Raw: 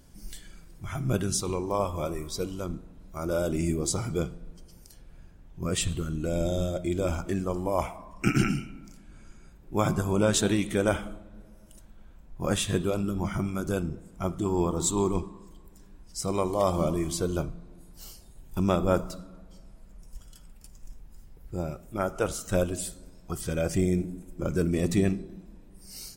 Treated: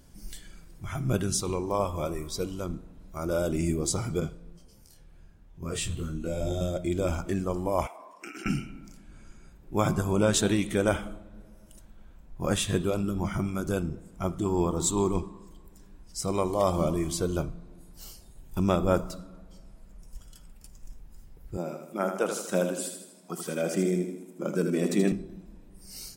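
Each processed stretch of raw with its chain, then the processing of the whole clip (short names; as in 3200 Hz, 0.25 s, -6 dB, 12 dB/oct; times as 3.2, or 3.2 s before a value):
4.2–6.61 doubler 25 ms -7.5 dB + detuned doubles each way 15 cents
7.87–8.46 HPF 330 Hz 24 dB/oct + compressor 3:1, threshold -42 dBFS
21.57–25.12 Chebyshev high-pass 180 Hz, order 4 + feedback echo 79 ms, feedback 49%, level -6.5 dB
whole clip: dry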